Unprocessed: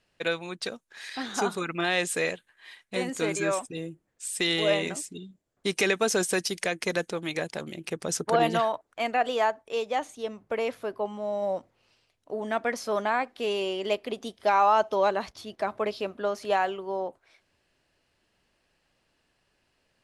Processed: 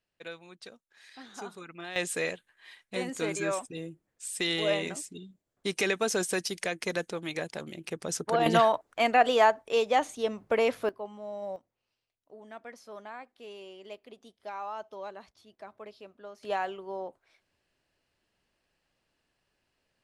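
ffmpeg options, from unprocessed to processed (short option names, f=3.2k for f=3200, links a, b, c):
-af "asetnsamples=n=441:p=0,asendcmd='1.96 volume volume -3.5dB;8.46 volume volume 3.5dB;10.89 volume volume -8.5dB;11.56 volume volume -17dB;16.43 volume volume -6dB',volume=-14dB"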